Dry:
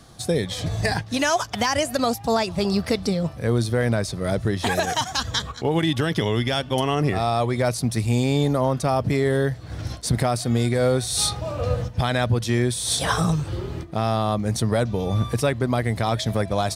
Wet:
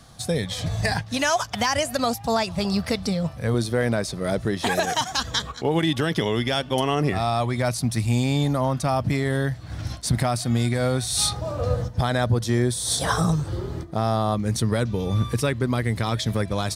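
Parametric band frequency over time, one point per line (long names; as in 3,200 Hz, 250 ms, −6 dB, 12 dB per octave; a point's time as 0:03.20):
parametric band −8 dB 0.62 octaves
360 Hz
from 0:03.54 93 Hz
from 0:07.12 440 Hz
from 0:11.33 2,600 Hz
from 0:14.34 690 Hz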